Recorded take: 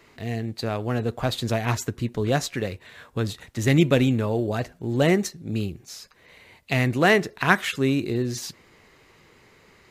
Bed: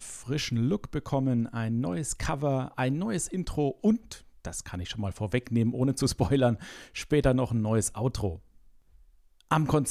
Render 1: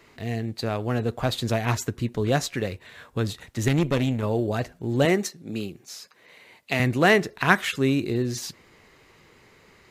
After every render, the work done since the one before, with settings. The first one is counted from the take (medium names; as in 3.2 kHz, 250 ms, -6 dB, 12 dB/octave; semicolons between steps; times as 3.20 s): 3.68–4.23 s: valve stage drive 16 dB, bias 0.7; 5.05–6.80 s: Bessel high-pass 220 Hz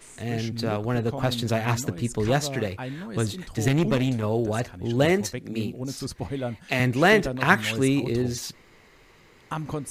add bed -6.5 dB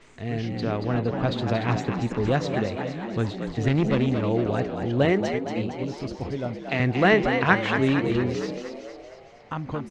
distance through air 180 m; frequency-shifting echo 230 ms, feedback 54%, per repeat +68 Hz, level -7 dB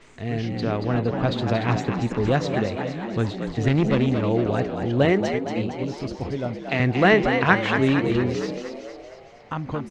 trim +2 dB; peak limiter -3 dBFS, peak gain reduction 1 dB